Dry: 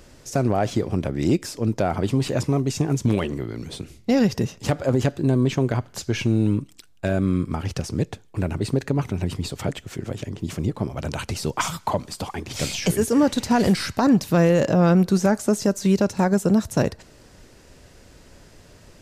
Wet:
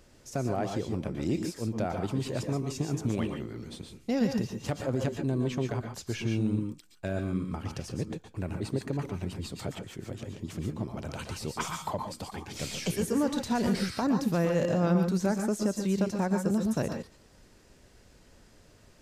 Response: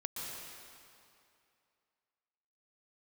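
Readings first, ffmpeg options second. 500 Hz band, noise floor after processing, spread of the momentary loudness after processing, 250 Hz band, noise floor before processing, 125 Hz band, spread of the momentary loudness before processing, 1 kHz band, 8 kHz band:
−8.5 dB, −58 dBFS, 11 LU, −8.5 dB, −51 dBFS, −9.0 dB, 12 LU, −8.5 dB, −8.5 dB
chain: -filter_complex "[1:a]atrim=start_sample=2205,atrim=end_sample=6615[link_01];[0:a][link_01]afir=irnorm=-1:irlink=0,volume=-6.5dB"

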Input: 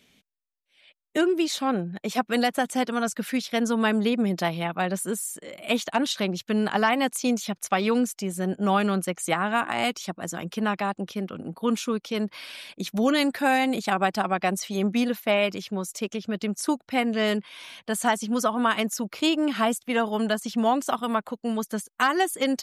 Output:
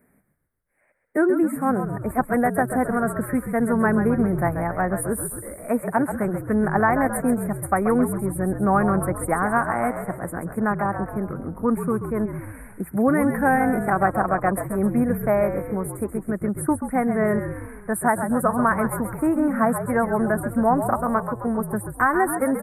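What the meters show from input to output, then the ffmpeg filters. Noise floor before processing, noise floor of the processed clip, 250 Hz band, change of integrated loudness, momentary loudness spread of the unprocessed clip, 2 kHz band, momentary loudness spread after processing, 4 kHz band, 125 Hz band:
−74 dBFS, −61 dBFS, +3.5 dB, +3.0 dB, 8 LU, +1.5 dB, 8 LU, below −40 dB, +8.0 dB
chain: -filter_complex "[0:a]asuperstop=centerf=4300:order=12:qfactor=0.61,asplit=8[link_01][link_02][link_03][link_04][link_05][link_06][link_07][link_08];[link_02]adelay=133,afreqshift=-55,volume=-8.5dB[link_09];[link_03]adelay=266,afreqshift=-110,volume=-13.5dB[link_10];[link_04]adelay=399,afreqshift=-165,volume=-18.6dB[link_11];[link_05]adelay=532,afreqshift=-220,volume=-23.6dB[link_12];[link_06]adelay=665,afreqshift=-275,volume=-28.6dB[link_13];[link_07]adelay=798,afreqshift=-330,volume=-33.7dB[link_14];[link_08]adelay=931,afreqshift=-385,volume=-38.7dB[link_15];[link_01][link_09][link_10][link_11][link_12][link_13][link_14][link_15]amix=inputs=8:normalize=0,volume=3dB"

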